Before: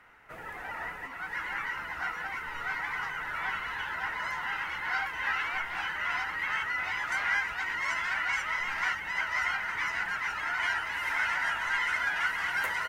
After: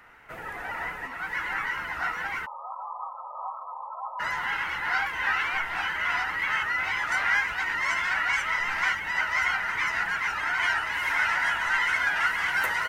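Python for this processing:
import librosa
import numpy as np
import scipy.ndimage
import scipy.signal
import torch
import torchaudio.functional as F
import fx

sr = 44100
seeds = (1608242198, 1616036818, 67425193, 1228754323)

y = fx.brickwall_bandpass(x, sr, low_hz=500.0, high_hz=1300.0, at=(2.45, 4.19), fade=0.02)
y = fx.wow_flutter(y, sr, seeds[0], rate_hz=2.1, depth_cents=42.0)
y = F.gain(torch.from_numpy(y), 4.5).numpy()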